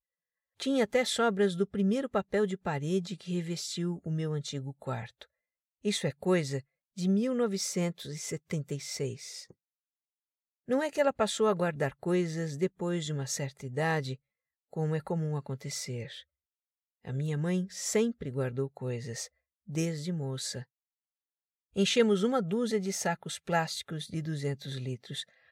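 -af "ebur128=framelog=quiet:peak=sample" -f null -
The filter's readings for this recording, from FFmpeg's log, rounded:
Integrated loudness:
  I:         -31.9 LUFS
  Threshold: -42.2 LUFS
Loudness range:
  LRA:         5.5 LU
  Threshold: -52.8 LUFS
  LRA low:   -35.7 LUFS
  LRA high:  -30.3 LUFS
Sample peak:
  Peak:      -12.0 dBFS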